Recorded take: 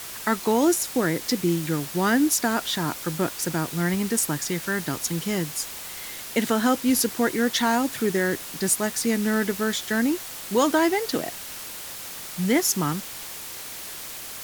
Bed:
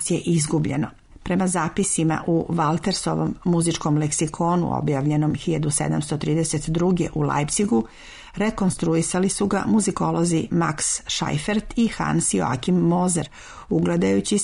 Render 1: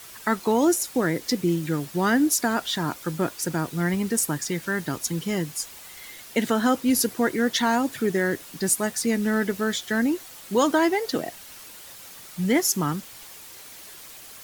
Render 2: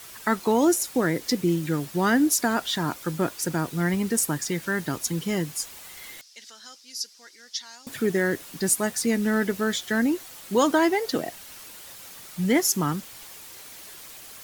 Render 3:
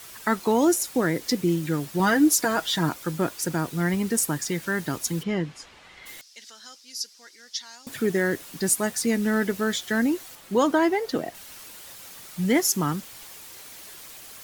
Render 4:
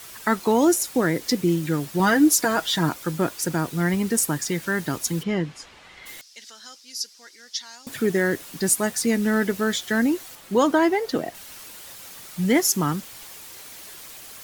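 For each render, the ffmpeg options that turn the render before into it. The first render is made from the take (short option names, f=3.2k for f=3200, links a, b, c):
-af "afftdn=nr=8:nf=-37"
-filter_complex "[0:a]asettb=1/sr,asplit=3[a][b][c];[a]atrim=end=6.214[d];[b]atrim=start=6.21:end=7.87,asetpts=PTS-STARTPTS,afade=t=in:d=0.004:c=qsin,afade=t=out:st=1.656:d=0.004:c=qsin,bandpass=f=5.2k:t=q:w=3.8[e];[c]atrim=start=7.866[f];[d][e]acrossfade=d=0.004:c1=hsin:c2=qsin[g];[g][f]acrossfade=d=0.004:c1=qsin:c2=hsin"
-filter_complex "[0:a]asettb=1/sr,asplit=3[a][b][c];[a]atrim=end=1.994[d];[b]atrim=start=1.99:end=2.89,asetpts=PTS-STARTPTS,afade=t=in:d=0.004:c=qsin,afade=t=out:st=0.896:d=0.004:c=qsin,aecho=1:1:6.2:0.65,atrim=end_sample=39690[e];[c]atrim=start=2.886[f];[d][e]acrossfade=d=0.004:c1=hsin:c2=qsin[g];[g][f]acrossfade=d=0.004:c1=qsin:c2=hsin,asplit=3[h][i][j];[h]afade=t=out:st=5.22:d=0.02[k];[i]lowpass=3.2k,afade=t=in:st=5.22:d=0.02,afade=t=out:st=6.05:d=0.02[l];[j]afade=t=in:st=6.05:d=0.02[m];[k][l][m]amix=inputs=3:normalize=0,asettb=1/sr,asplit=3[n][o][p];[n]atrim=end=10.354[q];[o]atrim=start=10.35:end=11.35,asetpts=PTS-STARTPTS,afade=t=in:d=0.004:c=qsin,afade=t=out:st=0.996:d=0.004:c=qsin,highshelf=f=3.1k:g=-7[r];[p]atrim=start=11.346[s];[q][r]acrossfade=d=0.004:c1=hsin:c2=qsin[t];[t][s]acrossfade=d=0.004:c1=qsin:c2=hsin"
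-af "volume=2dB"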